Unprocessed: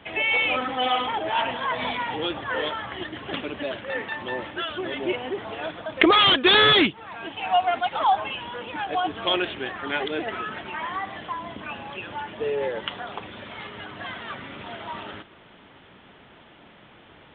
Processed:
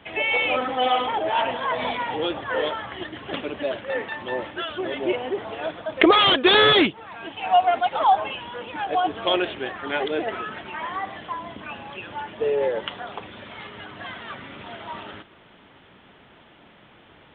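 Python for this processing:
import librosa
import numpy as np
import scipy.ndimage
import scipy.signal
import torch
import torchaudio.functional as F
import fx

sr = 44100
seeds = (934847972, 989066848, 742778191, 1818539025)

y = fx.dynamic_eq(x, sr, hz=550.0, q=0.98, threshold_db=-36.0, ratio=4.0, max_db=6)
y = F.gain(torch.from_numpy(y), -1.0).numpy()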